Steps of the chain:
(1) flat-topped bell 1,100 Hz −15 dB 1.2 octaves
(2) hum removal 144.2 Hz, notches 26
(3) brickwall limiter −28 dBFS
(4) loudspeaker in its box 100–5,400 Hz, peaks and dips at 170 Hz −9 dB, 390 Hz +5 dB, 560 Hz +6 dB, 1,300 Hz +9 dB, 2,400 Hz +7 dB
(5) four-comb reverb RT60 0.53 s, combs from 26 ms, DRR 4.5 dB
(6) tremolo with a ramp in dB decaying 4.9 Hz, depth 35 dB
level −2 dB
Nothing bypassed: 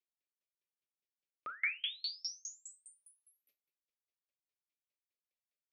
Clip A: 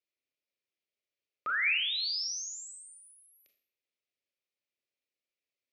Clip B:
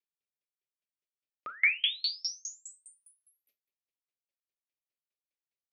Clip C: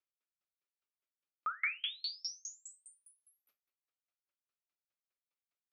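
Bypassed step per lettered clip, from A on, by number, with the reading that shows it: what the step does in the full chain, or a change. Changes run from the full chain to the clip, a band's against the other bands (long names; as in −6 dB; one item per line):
6, change in momentary loudness spread −1 LU
3, average gain reduction 5.0 dB
1, 1 kHz band +7.5 dB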